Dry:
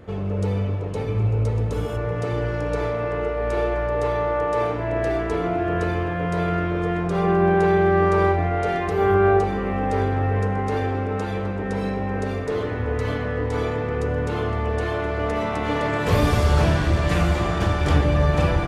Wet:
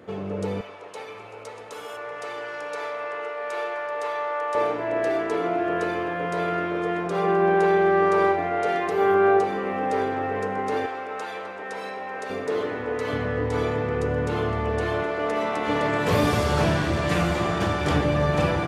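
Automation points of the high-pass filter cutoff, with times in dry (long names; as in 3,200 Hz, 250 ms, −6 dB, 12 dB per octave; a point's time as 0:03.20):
200 Hz
from 0:00.61 800 Hz
from 0:04.55 280 Hz
from 0:10.86 660 Hz
from 0:12.30 260 Hz
from 0:13.13 91 Hz
from 0:15.03 260 Hz
from 0:15.68 130 Hz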